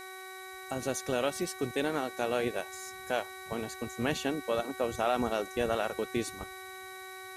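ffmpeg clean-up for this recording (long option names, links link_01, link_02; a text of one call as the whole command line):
ffmpeg -i in.wav -af "bandreject=frequency=376.5:width_type=h:width=4,bandreject=frequency=753:width_type=h:width=4,bandreject=frequency=1129.5:width_type=h:width=4,bandreject=frequency=1506:width_type=h:width=4,bandreject=frequency=1882.5:width_type=h:width=4,bandreject=frequency=2259:width_type=h:width=4,bandreject=frequency=3900:width=30,afftdn=noise_reduction=30:noise_floor=-45" out.wav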